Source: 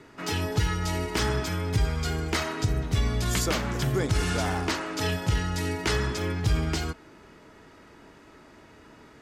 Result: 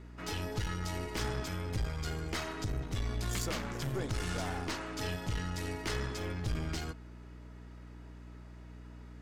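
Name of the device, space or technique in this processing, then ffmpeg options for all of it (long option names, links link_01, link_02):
valve amplifier with mains hum: -af "aeval=exprs='(tanh(14.1*val(0)+0.5)-tanh(0.5))/14.1':channel_layout=same,aeval=exprs='val(0)+0.00794*(sin(2*PI*60*n/s)+sin(2*PI*2*60*n/s)/2+sin(2*PI*3*60*n/s)/3+sin(2*PI*4*60*n/s)/4+sin(2*PI*5*60*n/s)/5)':channel_layout=same,volume=-6dB"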